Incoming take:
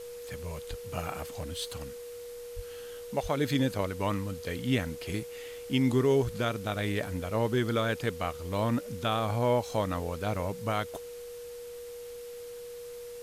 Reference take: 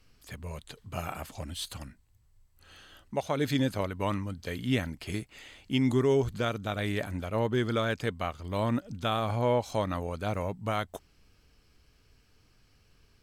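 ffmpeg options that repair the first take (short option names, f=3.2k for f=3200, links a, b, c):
-filter_complex "[0:a]bandreject=f=480:w=30,asplit=3[a][b][c];[a]afade=t=out:st=0.69:d=0.02[d];[b]highpass=f=140:w=0.5412,highpass=f=140:w=1.3066,afade=t=in:st=0.69:d=0.02,afade=t=out:st=0.81:d=0.02[e];[c]afade=t=in:st=0.81:d=0.02[f];[d][e][f]amix=inputs=3:normalize=0,asplit=3[g][h][i];[g]afade=t=out:st=2.55:d=0.02[j];[h]highpass=f=140:w=0.5412,highpass=f=140:w=1.3066,afade=t=in:st=2.55:d=0.02,afade=t=out:st=2.67:d=0.02[k];[i]afade=t=in:st=2.67:d=0.02[l];[j][k][l]amix=inputs=3:normalize=0,asplit=3[m][n][o];[m]afade=t=out:st=3.22:d=0.02[p];[n]highpass=f=140:w=0.5412,highpass=f=140:w=1.3066,afade=t=in:st=3.22:d=0.02,afade=t=out:st=3.34:d=0.02[q];[o]afade=t=in:st=3.34:d=0.02[r];[p][q][r]amix=inputs=3:normalize=0,afwtdn=0.0025"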